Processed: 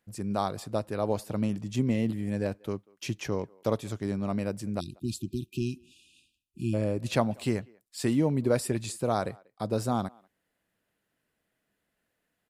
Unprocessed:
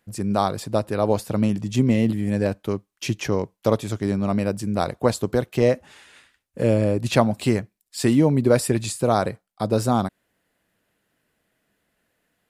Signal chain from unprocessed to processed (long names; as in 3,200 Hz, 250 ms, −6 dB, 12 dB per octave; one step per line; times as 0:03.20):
time-frequency box erased 0:04.80–0:06.74, 370–2,400 Hz
far-end echo of a speakerphone 190 ms, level −26 dB
level −8 dB